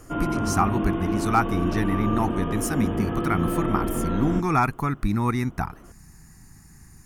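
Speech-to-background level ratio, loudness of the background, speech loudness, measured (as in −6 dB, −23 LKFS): 1.0 dB, −27.0 LKFS, −26.0 LKFS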